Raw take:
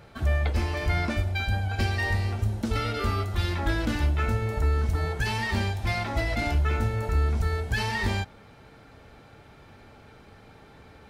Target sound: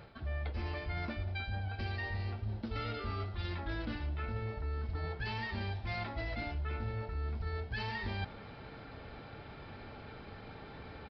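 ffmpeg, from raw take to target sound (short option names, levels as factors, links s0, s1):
-af "areverse,acompressor=threshold=0.0126:ratio=6,areverse,aresample=11025,aresample=44100,volume=1.26"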